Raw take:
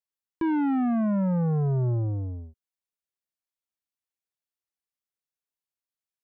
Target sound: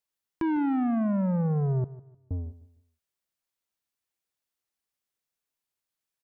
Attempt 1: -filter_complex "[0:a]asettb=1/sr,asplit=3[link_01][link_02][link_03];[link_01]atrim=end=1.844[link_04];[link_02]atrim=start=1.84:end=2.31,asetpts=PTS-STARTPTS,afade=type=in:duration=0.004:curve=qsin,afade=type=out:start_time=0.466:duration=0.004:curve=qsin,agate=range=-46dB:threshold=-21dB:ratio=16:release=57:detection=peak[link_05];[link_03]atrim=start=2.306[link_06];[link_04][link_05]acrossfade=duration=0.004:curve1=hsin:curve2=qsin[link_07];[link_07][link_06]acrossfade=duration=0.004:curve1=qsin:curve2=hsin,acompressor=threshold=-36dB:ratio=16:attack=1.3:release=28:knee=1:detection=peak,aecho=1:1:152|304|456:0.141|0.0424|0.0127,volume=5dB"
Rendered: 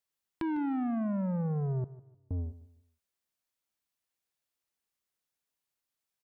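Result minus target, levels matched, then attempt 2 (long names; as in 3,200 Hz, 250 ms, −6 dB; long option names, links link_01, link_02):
downward compressor: peak gain reduction +5.5 dB
-filter_complex "[0:a]asettb=1/sr,asplit=3[link_01][link_02][link_03];[link_01]atrim=end=1.844[link_04];[link_02]atrim=start=1.84:end=2.31,asetpts=PTS-STARTPTS,afade=type=in:duration=0.004:curve=qsin,afade=type=out:start_time=0.466:duration=0.004:curve=qsin,agate=range=-46dB:threshold=-21dB:ratio=16:release=57:detection=peak[link_05];[link_03]atrim=start=2.306[link_06];[link_04][link_05]acrossfade=duration=0.004:curve1=hsin:curve2=qsin[link_07];[link_07][link_06]acrossfade=duration=0.004:curve1=qsin:curve2=hsin,acompressor=threshold=-30dB:ratio=16:attack=1.3:release=28:knee=1:detection=peak,aecho=1:1:152|304|456:0.141|0.0424|0.0127,volume=5dB"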